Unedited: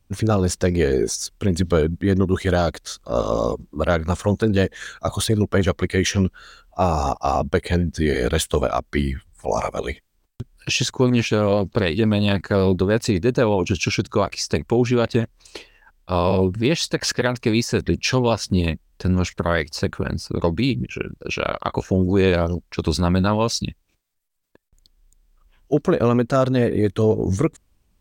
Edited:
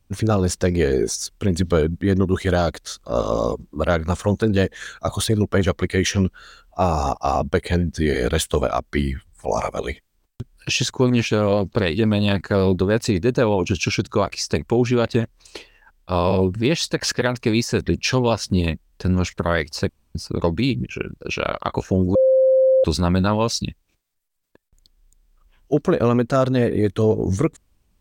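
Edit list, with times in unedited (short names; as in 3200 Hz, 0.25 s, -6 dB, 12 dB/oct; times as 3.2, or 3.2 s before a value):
19.89–20.15 room tone
22.15–22.84 bleep 525 Hz -11.5 dBFS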